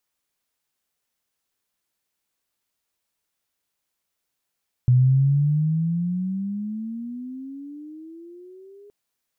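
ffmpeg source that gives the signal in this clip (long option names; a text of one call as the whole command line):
ffmpeg -f lavfi -i "aevalsrc='pow(10,(-12-32*t/4.02)/20)*sin(2*PI*123*4.02/(21*log(2)/12)*(exp(21*log(2)/12*t/4.02)-1))':duration=4.02:sample_rate=44100" out.wav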